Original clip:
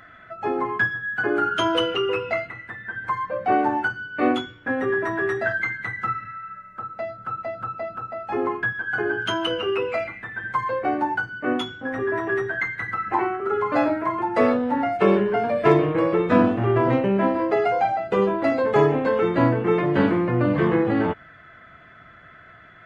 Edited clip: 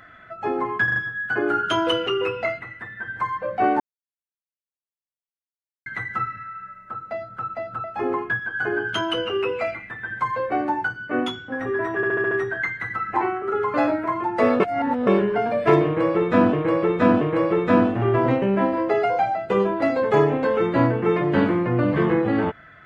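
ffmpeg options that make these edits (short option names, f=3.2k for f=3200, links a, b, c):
-filter_complex "[0:a]asplit=16[a][b][c][d][e][f][g][h][i][j][k][l][m][n][o][p];[a]atrim=end=0.882[q];[b]atrim=start=0.838:end=0.882[r];[c]atrim=start=0.838:end=0.882[s];[d]atrim=start=0.838:end=3.68,asetpts=PTS-STARTPTS,afade=t=out:st=2.838:d=0.004:c=hsin[t];[e]atrim=start=3.68:end=5.74,asetpts=PTS-STARTPTS,volume=0[u];[f]atrim=start=5.74:end=7.722,asetpts=PTS-STARTPTS,afade=t=in:d=0.004:c=hsin[v];[g]atrim=start=8.168:end=12.362[w];[h]atrim=start=12.288:end=12.362[x];[i]atrim=start=12.288:end=12.362[y];[j]atrim=start=12.288:end=12.362[z];[k]atrim=start=12.288:end=12.362[aa];[l]atrim=start=12.288:end=14.582[ab];[m]atrim=start=14.578:end=15.052,asetpts=PTS-STARTPTS,areverse[ac];[n]atrim=start=15.048:end=16.512[ad];[o]atrim=start=15.828:end=16.512[ae];[p]atrim=start=15.828[af];[q][r]acrossfade=d=0.004:c1=hsin:c2=hsin[ag];[ag][s]acrossfade=d=0.004:c1=hsin:c2=hsin[ah];[t][u][v]concat=n=3:v=0:a=1[ai];[ah][ai]acrossfade=d=0.004:c1=hsin:c2=hsin[aj];[aj][w]acrossfade=d=0.004:c1=hsin:c2=hsin[ak];[ak][x]acrossfade=d=0.004:c1=hsin:c2=hsin[al];[al][y]acrossfade=d=0.004:c1=hsin:c2=hsin[am];[am][z]acrossfade=d=0.004:c1=hsin:c2=hsin[an];[an][aa]acrossfade=d=0.004:c1=hsin:c2=hsin[ao];[ao][ab]acrossfade=d=0.004:c1=hsin:c2=hsin[ap];[ap][ac]acrossfade=d=0.004:c1=hsin:c2=hsin[aq];[aq][ad]acrossfade=d=0.004:c1=hsin:c2=hsin[ar];[ar][ae]acrossfade=d=0.004:c1=hsin:c2=hsin[as];[as][af]acrossfade=d=0.004:c1=hsin:c2=hsin"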